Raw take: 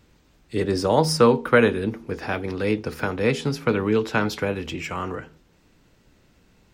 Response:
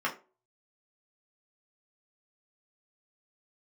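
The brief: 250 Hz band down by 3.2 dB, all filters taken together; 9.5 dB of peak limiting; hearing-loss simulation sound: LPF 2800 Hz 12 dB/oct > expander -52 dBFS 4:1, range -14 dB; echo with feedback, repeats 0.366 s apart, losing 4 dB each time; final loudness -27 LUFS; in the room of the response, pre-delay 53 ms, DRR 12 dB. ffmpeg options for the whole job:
-filter_complex "[0:a]equalizer=f=250:t=o:g=-4,alimiter=limit=-13.5dB:level=0:latency=1,aecho=1:1:366|732|1098|1464|1830|2196|2562|2928|3294:0.631|0.398|0.25|0.158|0.0994|0.0626|0.0394|0.0249|0.0157,asplit=2[a][b];[1:a]atrim=start_sample=2205,adelay=53[c];[b][c]afir=irnorm=-1:irlink=0,volume=-21dB[d];[a][d]amix=inputs=2:normalize=0,lowpass=2.8k,agate=range=-14dB:threshold=-52dB:ratio=4,volume=-2dB"

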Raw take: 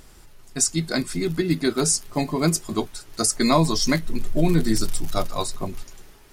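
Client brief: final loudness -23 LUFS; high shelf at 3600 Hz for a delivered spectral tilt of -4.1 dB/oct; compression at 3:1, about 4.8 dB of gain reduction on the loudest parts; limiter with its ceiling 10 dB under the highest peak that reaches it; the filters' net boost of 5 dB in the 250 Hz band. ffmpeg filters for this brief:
-af "equalizer=f=250:t=o:g=6.5,highshelf=f=3.6k:g=7.5,acompressor=threshold=-17dB:ratio=3,volume=2dB,alimiter=limit=-11.5dB:level=0:latency=1"

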